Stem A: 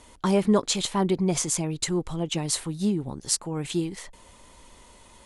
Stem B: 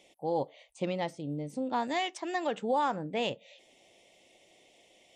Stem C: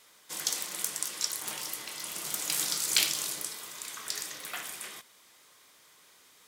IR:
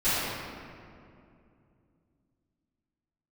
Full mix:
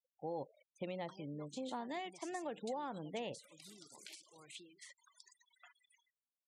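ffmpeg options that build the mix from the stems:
-filter_complex "[0:a]acompressor=threshold=0.0224:ratio=3,alimiter=level_in=1.12:limit=0.0631:level=0:latency=1:release=327,volume=0.891,bandpass=f=5700:t=q:w=0.56:csg=0,adelay=850,volume=0.631[s0];[1:a]volume=0.447,asplit=2[s1][s2];[2:a]acrossover=split=130|3000[s3][s4][s5];[s4]acompressor=threshold=0.0141:ratio=2[s6];[s3][s6][s5]amix=inputs=3:normalize=0,highshelf=f=3000:g=-3.5,adelay=1100,volume=0.112[s7];[s2]apad=whole_len=333936[s8];[s7][s8]sidechaincompress=threshold=0.00447:ratio=4:attack=24:release=163[s9];[s0][s1][s9]amix=inputs=3:normalize=0,afftfilt=real='re*gte(hypot(re,im),0.00282)':imag='im*gte(hypot(re,im),0.00282)':win_size=1024:overlap=0.75,acrossover=split=460|2600[s10][s11][s12];[s10]acompressor=threshold=0.00631:ratio=4[s13];[s11]acompressor=threshold=0.00708:ratio=4[s14];[s12]acompressor=threshold=0.00141:ratio=4[s15];[s13][s14][s15]amix=inputs=3:normalize=0"

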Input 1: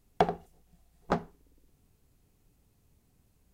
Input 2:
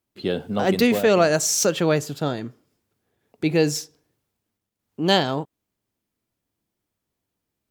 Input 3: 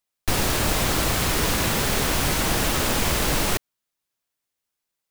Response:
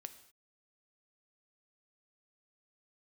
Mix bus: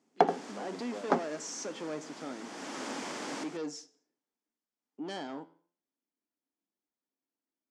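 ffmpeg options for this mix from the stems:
-filter_complex "[0:a]volume=1.06[s0];[1:a]asoftclip=type=tanh:threshold=0.0891,flanger=delay=9.5:depth=4.4:regen=85:speed=0.31:shape=triangular,volume=0.266,asplit=3[s1][s2][s3];[s2]volume=0.562[s4];[2:a]volume=0.2[s5];[s3]apad=whole_len=224987[s6];[s5][s6]sidechaincompress=threshold=0.00316:ratio=10:attack=16:release=613[s7];[3:a]atrim=start_sample=2205[s8];[s4][s8]afir=irnorm=-1:irlink=0[s9];[s0][s1][s7][s9]amix=inputs=4:normalize=0,highpass=f=220:w=0.5412,highpass=f=220:w=1.3066,equalizer=f=270:t=q:w=4:g=7,equalizer=f=870:t=q:w=4:g=3,equalizer=f=2700:t=q:w=4:g=-4,equalizer=f=3900:t=q:w=4:g=-6,lowpass=f=7300:w=0.5412,lowpass=f=7300:w=1.3066"

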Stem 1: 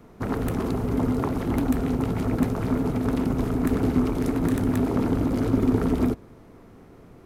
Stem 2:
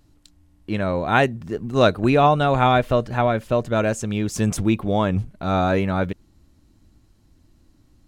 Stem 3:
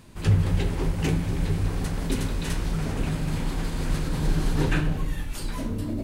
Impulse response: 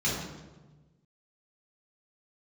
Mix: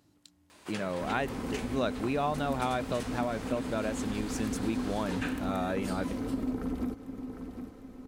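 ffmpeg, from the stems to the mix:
-filter_complex "[0:a]aecho=1:1:3.9:0.55,adelay=800,volume=0.473,asplit=2[s0][s1];[s1]volume=0.178[s2];[1:a]highpass=140,volume=0.631[s3];[2:a]highpass=540,equalizer=f=12000:t=o:w=0.23:g=-7.5,adelay=500,volume=1.06[s4];[s2]aecho=0:1:754|1508|2262|3016|3770:1|0.39|0.152|0.0593|0.0231[s5];[s0][s3][s4][s5]amix=inputs=4:normalize=0,acompressor=threshold=0.0178:ratio=2"

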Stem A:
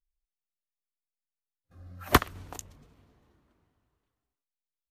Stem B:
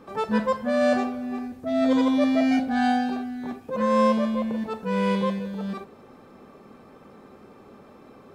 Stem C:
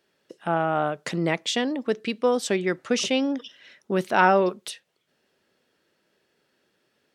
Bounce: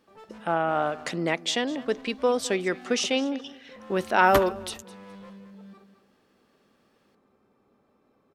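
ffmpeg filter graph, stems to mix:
-filter_complex "[0:a]asplit=2[s0][s1];[s1]adelay=8.8,afreqshift=-0.75[s2];[s0][s2]amix=inputs=2:normalize=1,adelay=2200,volume=0.794[s3];[1:a]asoftclip=type=hard:threshold=0.0531,volume=0.119,asplit=2[s4][s5];[s5]volume=0.316[s6];[2:a]lowshelf=f=160:g=-10.5,volume=0.944,asplit=3[s7][s8][s9];[s8]volume=0.112[s10];[s9]apad=whole_len=313518[s11];[s3][s11]sidechaingate=range=0.0224:threshold=0.00501:ratio=16:detection=peak[s12];[s6][s10]amix=inputs=2:normalize=0,aecho=0:1:208|416|624|832:1|0.22|0.0484|0.0106[s13];[s12][s4][s7][s13]amix=inputs=4:normalize=0"

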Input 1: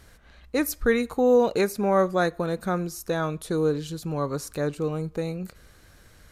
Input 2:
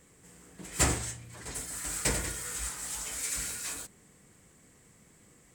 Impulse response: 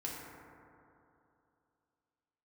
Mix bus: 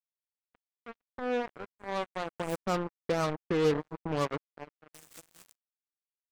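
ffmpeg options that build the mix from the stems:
-filter_complex "[0:a]firequalizer=gain_entry='entry(120,0);entry(740,3);entry(1200,4);entry(2300,-23)':delay=0.05:min_phase=1,volume=0.562,afade=t=in:st=0.73:d=0.41:silence=0.398107,afade=t=in:st=2.16:d=0.68:silence=0.281838,afade=t=out:st=4.19:d=0.52:silence=0.266073,asplit=3[s0][s1][s2];[s1]volume=0.0794[s3];[1:a]highpass=f=320:w=0.5412,highpass=f=320:w=1.3066,aeval=exprs='0.0376*(abs(mod(val(0)/0.0376+3,4)-2)-1)':c=same,adelay=1700,volume=0.794,asplit=3[s4][s5][s6];[s4]atrim=end=2.6,asetpts=PTS-STARTPTS,afade=t=out:st=2.596:d=0.004:c=hsin[s7];[s5]atrim=start=2.6:end=4.94,asetpts=PTS-STARTPTS,volume=0[s8];[s6]atrim=start=4.94,asetpts=PTS-STARTPTS,afade=t=in:d=0.004:c=hsin[s9];[s7][s8][s9]concat=n=3:v=0:a=1[s10];[s2]apad=whole_len=319492[s11];[s10][s11]sidechaincompress=threshold=0.00447:ratio=6:attack=31:release=235[s12];[2:a]atrim=start_sample=2205[s13];[s3][s13]afir=irnorm=-1:irlink=0[s14];[s0][s12][s14]amix=inputs=3:normalize=0,highpass=59,acompressor=mode=upward:threshold=0.0126:ratio=2.5,acrusher=bits=4:mix=0:aa=0.5"

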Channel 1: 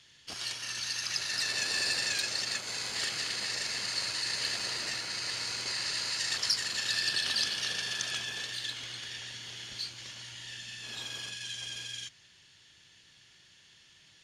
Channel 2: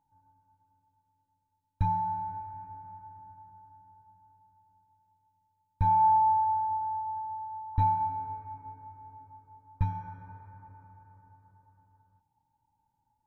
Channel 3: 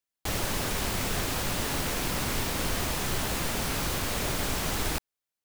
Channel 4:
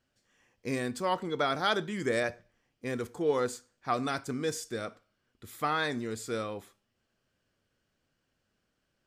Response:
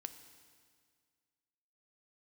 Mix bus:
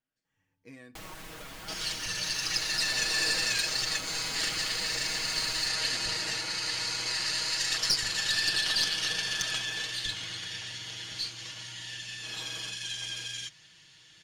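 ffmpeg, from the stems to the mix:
-filter_complex "[0:a]adelay=1400,volume=1.33[s0];[1:a]equalizer=f=930:w=1.7:g=-15,adelay=250,volume=0.501[s1];[2:a]adelay=700,volume=0.316[s2];[3:a]equalizer=f=250:t=o:w=0.22:g=11,volume=0.133[s3];[s1][s2][s3]amix=inputs=3:normalize=0,equalizer=f=2000:w=0.59:g=5,acompressor=threshold=0.00631:ratio=3,volume=1[s4];[s0][s4]amix=inputs=2:normalize=0,aecho=1:1:6.3:0.68,aeval=exprs='(tanh(5.62*val(0)+0.35)-tanh(0.35))/5.62':c=same"

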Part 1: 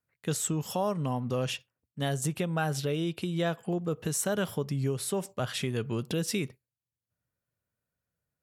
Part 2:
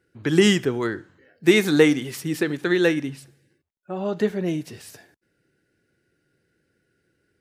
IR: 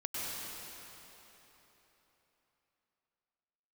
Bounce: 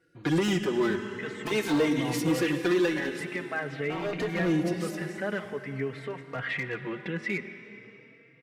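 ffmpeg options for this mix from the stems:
-filter_complex "[0:a]highpass=110,alimiter=limit=0.0841:level=0:latency=1:release=11,lowpass=f=2000:t=q:w=9,adelay=950,volume=1,asplit=2[s0][s1];[s1]volume=0.237[s2];[1:a]highshelf=f=9800:g=-8,acompressor=threshold=0.0891:ratio=12,volume=1.41,asplit=2[s3][s4];[s4]volume=0.282[s5];[2:a]atrim=start_sample=2205[s6];[s2][s5]amix=inputs=2:normalize=0[s7];[s7][s6]afir=irnorm=-1:irlink=0[s8];[s0][s3][s8]amix=inputs=3:normalize=0,asoftclip=type=hard:threshold=0.119,lowshelf=f=120:g=-7,asplit=2[s9][s10];[s10]adelay=3.8,afreqshift=0.46[s11];[s9][s11]amix=inputs=2:normalize=1"

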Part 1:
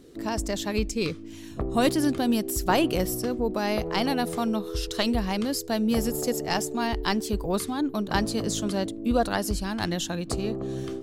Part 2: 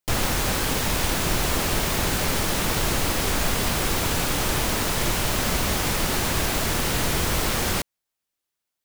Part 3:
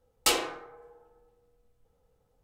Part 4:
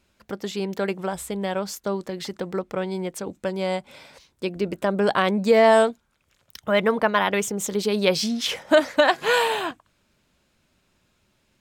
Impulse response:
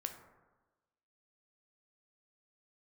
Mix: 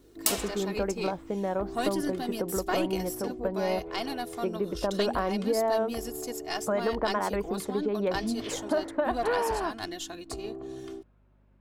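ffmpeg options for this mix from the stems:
-filter_complex "[0:a]aecho=1:1:2.8:0.7,aeval=exprs='(tanh(3.55*val(0)+0.6)-tanh(0.6))/3.55':c=same,volume=0.531[s0];[2:a]aemphasis=mode=production:type=75kf,acompressor=threshold=0.0891:ratio=6,volume=0.75[s1];[3:a]lowpass=1100,acompressor=threshold=0.0562:ratio=5,volume=1.12[s2];[s0][s1][s2]amix=inputs=3:normalize=0,lowshelf=f=220:g=-6.5,aeval=exprs='val(0)+0.000794*(sin(2*PI*50*n/s)+sin(2*PI*2*50*n/s)/2+sin(2*PI*3*50*n/s)/3+sin(2*PI*4*50*n/s)/4+sin(2*PI*5*50*n/s)/5)':c=same"

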